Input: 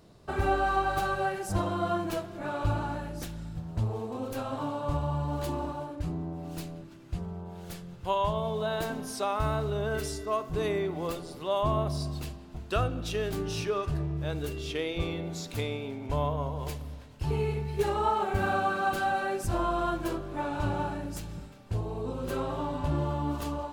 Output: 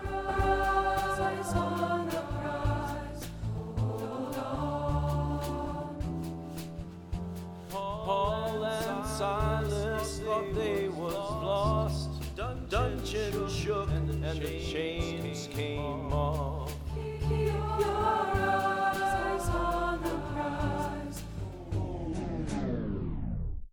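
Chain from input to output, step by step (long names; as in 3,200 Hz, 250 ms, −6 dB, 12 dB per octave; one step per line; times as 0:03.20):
turntable brake at the end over 2.18 s
backwards echo 342 ms −6.5 dB
level −1.5 dB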